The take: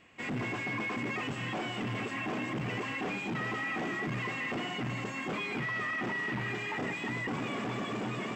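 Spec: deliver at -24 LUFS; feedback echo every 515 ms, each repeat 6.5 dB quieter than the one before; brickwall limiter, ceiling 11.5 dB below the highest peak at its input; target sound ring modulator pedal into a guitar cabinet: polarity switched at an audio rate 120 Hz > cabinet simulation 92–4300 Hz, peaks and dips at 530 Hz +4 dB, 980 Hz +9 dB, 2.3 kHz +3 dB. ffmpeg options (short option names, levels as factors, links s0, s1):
-af "alimiter=level_in=5.01:limit=0.0631:level=0:latency=1,volume=0.2,aecho=1:1:515|1030|1545|2060|2575|3090:0.473|0.222|0.105|0.0491|0.0231|0.0109,aeval=exprs='val(0)*sgn(sin(2*PI*120*n/s))':c=same,highpass=92,equalizer=f=530:t=q:w=4:g=4,equalizer=f=980:t=q:w=4:g=9,equalizer=f=2300:t=q:w=4:g=3,lowpass=f=4300:w=0.5412,lowpass=f=4300:w=1.3066,volume=7.5"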